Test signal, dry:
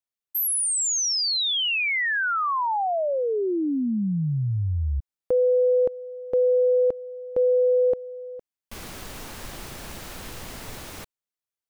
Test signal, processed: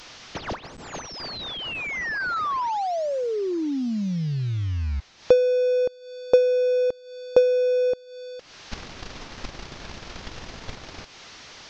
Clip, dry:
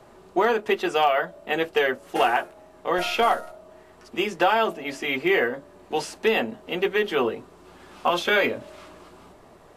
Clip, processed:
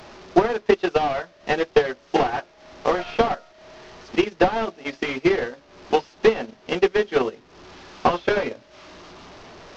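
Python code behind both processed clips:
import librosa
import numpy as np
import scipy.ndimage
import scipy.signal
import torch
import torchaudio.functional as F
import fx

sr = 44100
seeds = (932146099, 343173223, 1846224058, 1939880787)

y = fx.delta_mod(x, sr, bps=32000, step_db=-36.0)
y = fx.transient(y, sr, attack_db=11, sustain_db=-10)
y = y * 10.0 ** (-1.5 / 20.0)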